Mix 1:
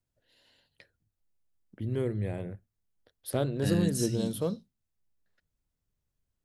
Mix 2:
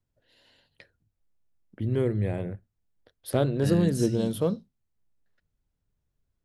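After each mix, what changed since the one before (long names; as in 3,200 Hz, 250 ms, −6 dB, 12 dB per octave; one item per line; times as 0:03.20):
first voice +5.0 dB
master: add high-shelf EQ 5,300 Hz −6 dB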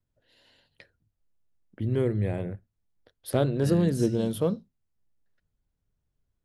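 second voice −4.0 dB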